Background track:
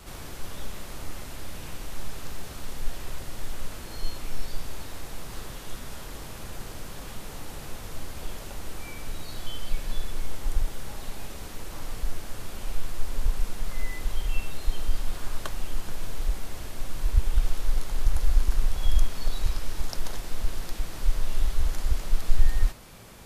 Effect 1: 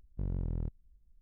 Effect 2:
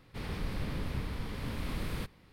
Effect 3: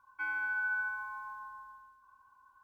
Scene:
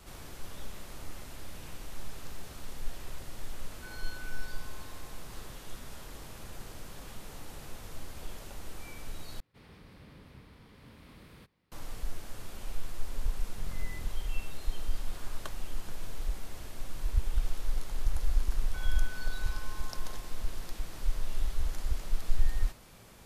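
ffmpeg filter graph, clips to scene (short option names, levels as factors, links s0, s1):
-filter_complex "[3:a]asplit=2[s0][s1];[0:a]volume=0.473[s2];[2:a]highpass=f=83:p=1[s3];[1:a]alimiter=level_in=2.24:limit=0.0631:level=0:latency=1:release=71,volume=0.447[s4];[s1]acompressor=threshold=0.0126:ratio=6:attack=3.2:release=140:knee=1:detection=peak[s5];[s2]asplit=2[s6][s7];[s6]atrim=end=9.404[s8];[s3]atrim=end=2.32,asetpts=PTS-STARTPTS,volume=0.188[s9];[s7]atrim=start=11.716[s10];[s0]atrim=end=2.63,asetpts=PTS-STARTPTS,volume=0.188,afade=t=in:d=0.004:c=hsin,afade=t=out:st=2.626:d=0.004:c=hsin,adelay=3630[s11];[s4]atrim=end=1.21,asetpts=PTS-STARTPTS,volume=0.447,afade=t=in:d=0.004:c=hsin,afade=t=out:st=1.206:d=0.004:c=hsin,adelay=13390[s12];[s5]atrim=end=2.63,asetpts=PTS-STARTPTS,volume=0.447,afade=t=in:d=0.004:c=hsin,afade=t=out:st=2.626:d=0.004:c=hsin,adelay=18550[s13];[s8][s9]acrossfade=d=0.004:c1=hsin:c2=hsin[s14];[s14][s10]acrossfade=d=0.004:c1=hsin:c2=hsin[s15];[s15][s11][s12][s13]amix=inputs=4:normalize=0"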